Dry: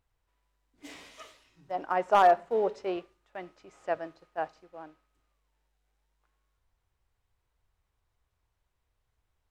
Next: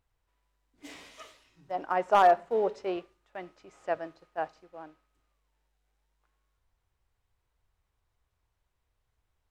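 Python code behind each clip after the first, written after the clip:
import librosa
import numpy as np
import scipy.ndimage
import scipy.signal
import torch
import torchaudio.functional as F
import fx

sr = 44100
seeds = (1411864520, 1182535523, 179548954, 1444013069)

y = x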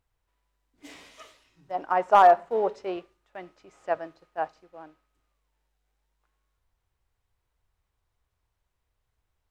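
y = fx.dynamic_eq(x, sr, hz=950.0, q=0.98, threshold_db=-34.0, ratio=4.0, max_db=6)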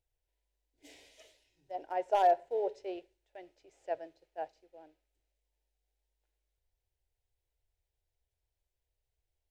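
y = fx.fixed_phaser(x, sr, hz=490.0, stages=4)
y = y * 10.0 ** (-6.5 / 20.0)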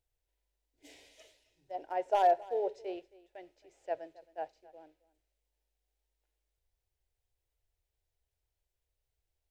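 y = x + 10.0 ** (-20.5 / 20.0) * np.pad(x, (int(269 * sr / 1000.0), 0))[:len(x)]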